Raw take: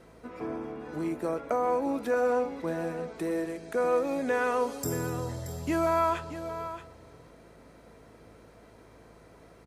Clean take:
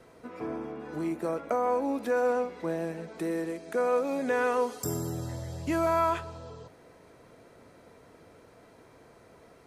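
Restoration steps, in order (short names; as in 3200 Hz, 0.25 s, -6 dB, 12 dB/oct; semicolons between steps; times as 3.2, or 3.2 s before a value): de-hum 53.9 Hz, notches 6; inverse comb 0.628 s -11.5 dB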